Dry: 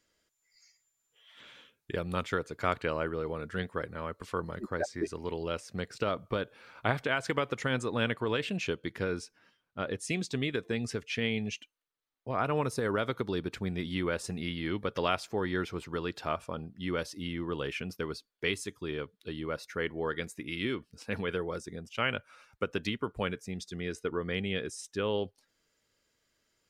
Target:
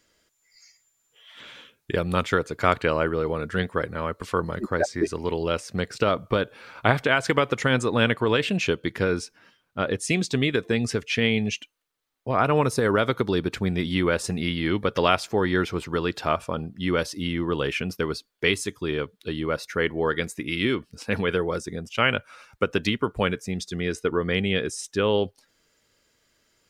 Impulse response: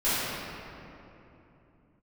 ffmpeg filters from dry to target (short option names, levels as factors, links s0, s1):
-af "volume=2.82"